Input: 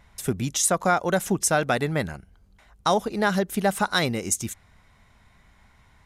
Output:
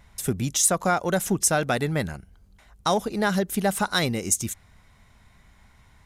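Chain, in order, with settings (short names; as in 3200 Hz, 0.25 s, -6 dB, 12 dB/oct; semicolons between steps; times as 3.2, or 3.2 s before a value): low shelf 320 Hz +3.5 dB; in parallel at -12 dB: soft clip -25.5 dBFS, distortion -6 dB; on the sum: high shelf 4400 Hz +5.5 dB; gain -3 dB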